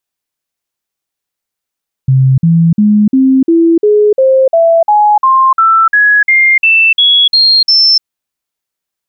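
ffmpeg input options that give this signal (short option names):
-f lavfi -i "aevalsrc='0.631*clip(min(mod(t,0.35),0.3-mod(t,0.35))/0.005,0,1)*sin(2*PI*132*pow(2,floor(t/0.35)/3)*mod(t,0.35))':d=5.95:s=44100"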